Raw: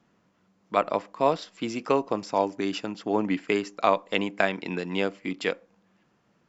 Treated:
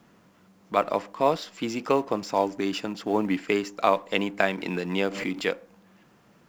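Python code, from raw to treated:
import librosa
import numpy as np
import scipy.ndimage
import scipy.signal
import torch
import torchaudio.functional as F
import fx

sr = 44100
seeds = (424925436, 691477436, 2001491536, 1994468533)

y = fx.law_mismatch(x, sr, coded='mu')
y = fx.pre_swell(y, sr, db_per_s=61.0, at=(4.57, 5.44))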